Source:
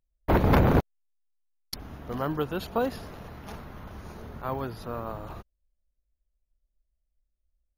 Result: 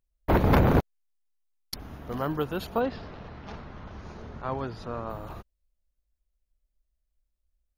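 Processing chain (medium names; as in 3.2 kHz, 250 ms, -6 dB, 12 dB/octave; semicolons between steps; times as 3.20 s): 2.79–5.09 s: low-pass 4.4 kHz -> 8.5 kHz 24 dB/octave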